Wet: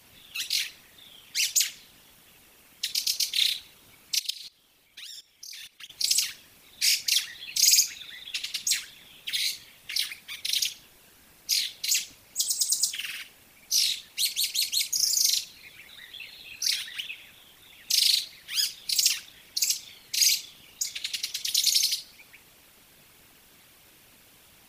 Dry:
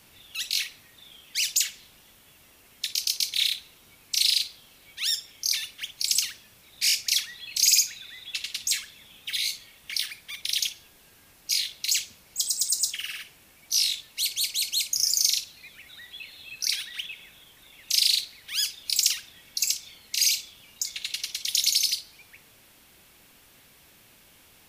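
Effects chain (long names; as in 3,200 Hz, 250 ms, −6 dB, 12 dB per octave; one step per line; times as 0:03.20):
0:04.19–0:05.90: output level in coarse steps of 21 dB
random phases in short frames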